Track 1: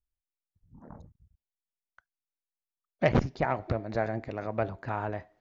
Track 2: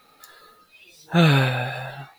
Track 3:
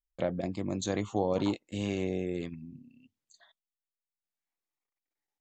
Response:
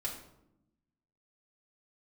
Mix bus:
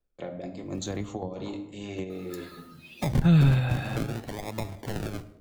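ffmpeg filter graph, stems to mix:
-filter_complex "[0:a]equalizer=frequency=4800:width_type=o:width=2.5:gain=8.5,acrusher=samples=41:mix=1:aa=0.000001:lfo=1:lforange=24.6:lforate=0.6,volume=1.5dB,asplit=3[link_01][link_02][link_03];[link_02]volume=-12.5dB[link_04];[1:a]adelay=2100,volume=1dB[link_05];[2:a]volume=1.5dB,asplit=2[link_06][link_07];[link_07]volume=-9dB[link_08];[link_03]apad=whole_len=238537[link_09];[link_06][link_09]sidechaingate=range=-12dB:threshold=-58dB:ratio=16:detection=peak[link_10];[3:a]atrim=start_sample=2205[link_11];[link_04][link_08]amix=inputs=2:normalize=0[link_12];[link_12][link_11]afir=irnorm=-1:irlink=0[link_13];[link_01][link_05][link_10][link_13]amix=inputs=4:normalize=0,acrossover=split=220[link_14][link_15];[link_15]acompressor=threshold=-33dB:ratio=5[link_16];[link_14][link_16]amix=inputs=2:normalize=0"

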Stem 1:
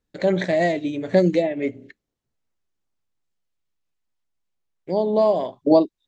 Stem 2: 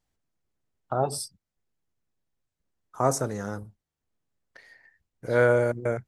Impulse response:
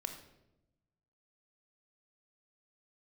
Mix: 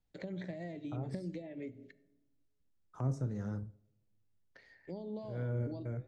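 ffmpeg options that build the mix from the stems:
-filter_complex "[0:a]acrossover=split=2200|4400[link_01][link_02][link_03];[link_01]acompressor=threshold=-21dB:ratio=4[link_04];[link_02]acompressor=threshold=-44dB:ratio=4[link_05];[link_03]acompressor=threshold=-58dB:ratio=4[link_06];[link_04][link_05][link_06]amix=inputs=3:normalize=0,volume=-12dB,asplit=3[link_07][link_08][link_09];[link_08]volume=-11dB[link_10];[1:a]lowpass=4900,lowshelf=frequency=430:gain=5,flanger=delay=9.4:depth=6.7:regen=-69:speed=1.1:shape=sinusoidal,volume=-2dB,asplit=2[link_11][link_12];[link_12]volume=-21dB[link_13];[link_09]apad=whole_len=267819[link_14];[link_11][link_14]sidechaincompress=threshold=-42dB:ratio=4:attack=16:release=281[link_15];[2:a]atrim=start_sample=2205[link_16];[link_10][link_13]amix=inputs=2:normalize=0[link_17];[link_17][link_16]afir=irnorm=-1:irlink=0[link_18];[link_07][link_15][link_18]amix=inputs=3:normalize=0,equalizer=frequency=1000:width=0.48:gain=-4.5,acrossover=split=250[link_19][link_20];[link_20]acompressor=threshold=-45dB:ratio=6[link_21];[link_19][link_21]amix=inputs=2:normalize=0"

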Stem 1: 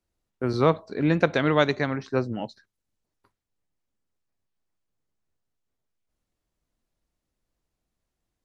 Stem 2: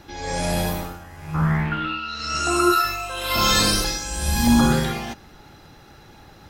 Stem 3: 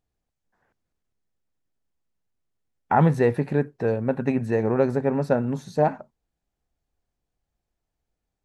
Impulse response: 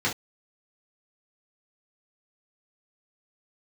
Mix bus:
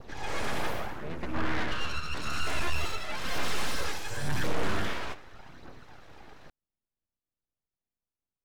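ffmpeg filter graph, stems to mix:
-filter_complex "[0:a]volume=-12dB[link_01];[1:a]adynamicequalizer=threshold=0.0126:dfrequency=1700:dqfactor=1.4:tfrequency=1700:tqfactor=1.4:attack=5:release=100:ratio=0.375:range=3:mode=boostabove:tftype=bell,aphaser=in_gain=1:out_gain=1:delay=2.8:decay=0.57:speed=0.88:type=triangular,volume=-2dB,asplit=2[link_02][link_03];[link_03]volume=-21.5dB[link_04];[3:a]atrim=start_sample=2205[link_05];[link_04][link_05]afir=irnorm=-1:irlink=0[link_06];[link_01][link_02][link_06]amix=inputs=3:normalize=0,aeval=exprs='abs(val(0))':channel_layout=same,lowpass=frequency=2700:poles=1,aeval=exprs='(tanh(6.31*val(0)+0.3)-tanh(0.3))/6.31':channel_layout=same"

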